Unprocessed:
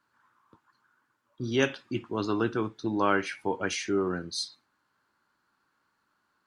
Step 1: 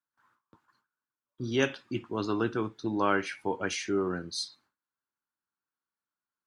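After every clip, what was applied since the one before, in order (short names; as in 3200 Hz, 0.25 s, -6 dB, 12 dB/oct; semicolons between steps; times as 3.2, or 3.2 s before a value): gate with hold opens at -57 dBFS; gain -1.5 dB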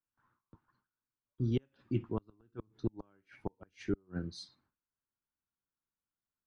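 flipped gate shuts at -20 dBFS, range -38 dB; RIAA curve playback; gain -6.5 dB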